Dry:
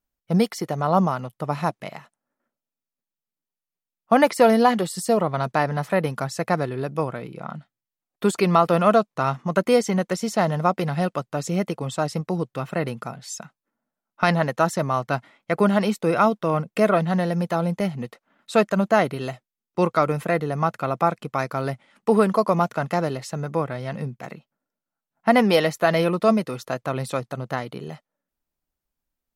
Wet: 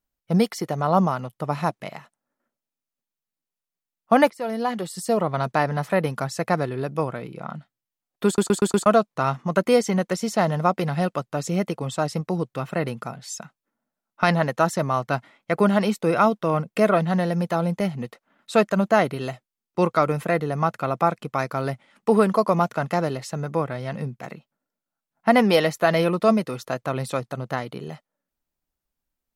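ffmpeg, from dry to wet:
-filter_complex "[0:a]asplit=7[a][b][c][d][e][f][g];[a]atrim=end=4.3,asetpts=PTS-STARTPTS,afade=t=out:st=4.296:d=0.004:c=hsin:silence=0.0944061[h];[b]atrim=start=4.3:end=8.382,asetpts=PTS-STARTPTS,afade=t=in:d=1.05:silence=0.0944061[i];[c]atrim=start=8.258:end=8.382[j];[d]atrim=start=8.258:end=8.382[k];[e]atrim=start=8.258:end=8.382[l];[f]atrim=start=8.258:end=8.382[m];[g]atrim=start=8.858[n];[h][i]concat=n=2:v=0:a=1[o];[o][j]acrossfade=d=0.004:c1=hsin:c2=hsin[p];[p][k]acrossfade=d=0.004:c1=hsin:c2=hsin[q];[q][l]acrossfade=d=0.004:c1=hsin:c2=hsin[r];[r][m]acrossfade=d=0.004:c1=hsin:c2=hsin[s];[s][n]acrossfade=d=0.004:c1=hsin:c2=hsin"

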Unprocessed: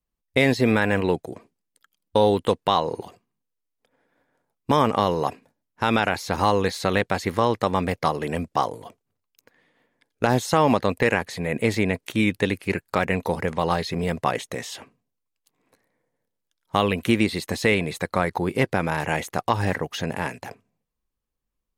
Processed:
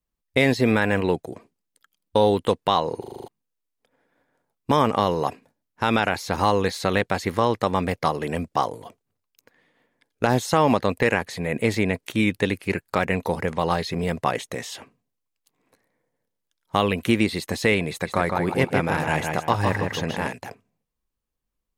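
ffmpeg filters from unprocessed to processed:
-filter_complex "[0:a]asettb=1/sr,asplit=3[a][b][c];[a]atrim=end=17.894[d];[b]atrim=start=17.89:end=20.33,asetpts=PTS-STARTPTS,afade=t=in:d=0.004:c=qsin,afade=t=out:st=2.436:d=0.004:c=qsin,asplit=2[e][f];[f]adelay=158,lowpass=f=4.7k:p=1,volume=-4dB,asplit=2[g][h];[h]adelay=158,lowpass=f=4.7k:p=1,volume=0.29,asplit=2[i][j];[j]adelay=158,lowpass=f=4.7k:p=1,volume=0.29,asplit=2[k][l];[l]adelay=158,lowpass=f=4.7k:p=1,volume=0.29[m];[e][g][i][k][m]amix=inputs=5:normalize=0,atrim=end_sample=107604[n];[c]atrim=start=20.326[o];[d][n]acrossfade=d=0.004:c1=hsin:c2=qsin[p];[p][o]acrossfade=d=0.004:c1=qsin:c2=hsin,asplit=8[q][r][s][t][u][v][w][x];[q]atrim=end=3.042[y];[r]atrim=start=2.998:end=3.042[z];[s]atrim=start=2.998:end=3.042[aa];[t]atrim=start=2.998:end=3.042[ab];[u]atrim=start=2.998:end=3.042[ac];[v]atrim=start=2.998:end=3.042[ad];[w]atrim=start=2.998:end=3.042[ae];[x]atrim=start=3.278[af];[y][z]acrossfade=d=0.004:c1=hsin:c2=hsin[ag];[ag][aa]acrossfade=d=0.004:c1=hsin:c2=hsin[ah];[ah][ab]acrossfade=d=0.004:c1=hsin:c2=hsin[ai];[ai][ac]acrossfade=d=0.004:c1=hsin:c2=hsin[aj];[aj][ad]acrossfade=d=0.004:c1=hsin:c2=hsin[ak];[ak][ae]acrossfade=d=0.004:c1=hsin:c2=hsin[al];[al][af]acrossfade=d=0.004:c1=hsin:c2=hsin"

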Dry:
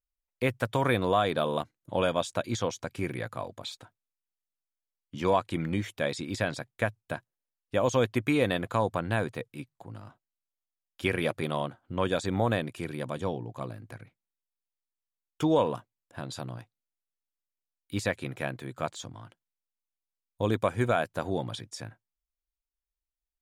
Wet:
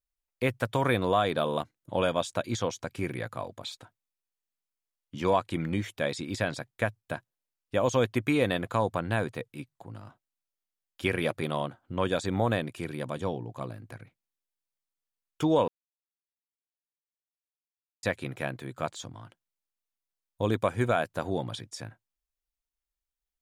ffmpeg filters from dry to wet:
-filter_complex "[0:a]asplit=3[a][b][c];[a]atrim=end=15.68,asetpts=PTS-STARTPTS,afade=t=out:st=15.676:d=0.004:c=hsin[d];[b]atrim=start=15.68:end=18.03,asetpts=PTS-STARTPTS,volume=0[e];[c]atrim=start=18.03,asetpts=PTS-STARTPTS,afade=t=in:d=0.004:c=hsin[f];[d][e][f]concat=n=3:v=0:a=1"

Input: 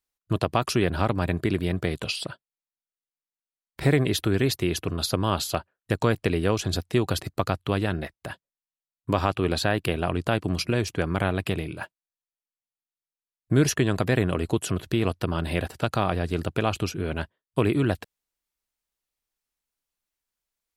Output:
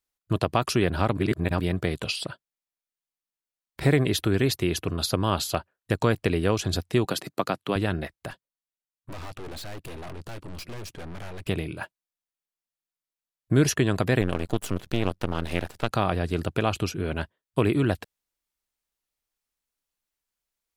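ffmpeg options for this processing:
-filter_complex "[0:a]asettb=1/sr,asplit=3[a][b][c];[a]atrim=end=7.054[d];[b]atrim=start=7.05:end=7.76,asetpts=PTS-STARTPTS,afade=t=in:d=0.004:c=qsin,afade=t=out:st=0.706:d=0.004:c=qsin,highpass=f=160:w=0.5412,highpass=f=160:w=1.3066[e];[c]atrim=start=7.756[f];[d][e]acrossfade=d=0.004:c1=hsin:c2=qsin[g];[g][f]acrossfade=d=0.004:c1=qsin:c2=hsin,asettb=1/sr,asplit=3[h][i][j];[h]atrim=end=8.304[k];[i]atrim=start=8.3:end=11.48,asetpts=PTS-STARTPTS,afade=t=in:d=0.004:c=qsin,afade=t=out:st=3.176:d=0.004:c=qsin,aeval=exprs='(tanh(70.8*val(0)+0.7)-tanh(0.7))/70.8':c=same[l];[j]atrim=start=11.476[m];[k][l]acrossfade=d=0.004:c1=hsin:c2=qsin[n];[n][m]acrossfade=d=0.004:c1=qsin:c2=hsin,asettb=1/sr,asplit=3[o][p][q];[o]atrim=end=14.214[r];[p]atrim=start=14.21:end=15.91,asetpts=PTS-STARTPTS,afade=t=in:d=0.004:c=qsin,afade=t=out:st=1.696:d=0.004:c=qsin,aeval=exprs='max(val(0),0)':c=same[s];[q]atrim=start=15.906[t];[r][s]acrossfade=d=0.004:c1=hsin:c2=qsin[u];[u][t]acrossfade=d=0.004:c1=qsin:c2=hsin,asplit=3[v][w][x];[v]atrim=end=1.172[y];[w]atrim=start=1.168:end=1.602,asetpts=PTS-STARTPTS,areverse[z];[x]atrim=start=1.598[aa];[y][z]acrossfade=d=0.004:c1=hsin:c2=hsin[ab];[ab][aa]acrossfade=d=0.004:c1=hsin:c2=hsin"

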